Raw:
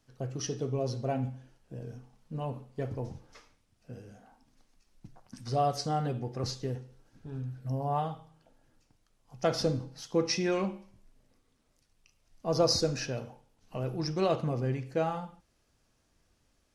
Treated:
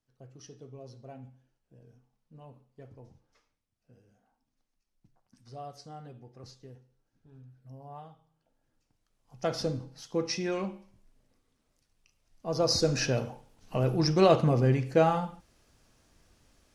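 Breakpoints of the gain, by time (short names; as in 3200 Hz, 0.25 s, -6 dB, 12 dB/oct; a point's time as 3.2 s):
8.17 s -15 dB
9.36 s -2.5 dB
12.58 s -2.5 dB
13.06 s +7 dB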